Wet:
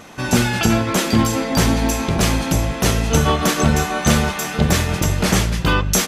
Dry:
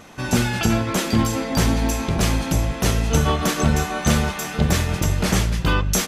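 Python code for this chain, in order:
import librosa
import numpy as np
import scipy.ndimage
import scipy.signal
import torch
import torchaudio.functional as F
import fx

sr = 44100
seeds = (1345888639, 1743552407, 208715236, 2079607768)

y = fx.low_shelf(x, sr, hz=94.0, db=-5.0)
y = F.gain(torch.from_numpy(y), 4.0).numpy()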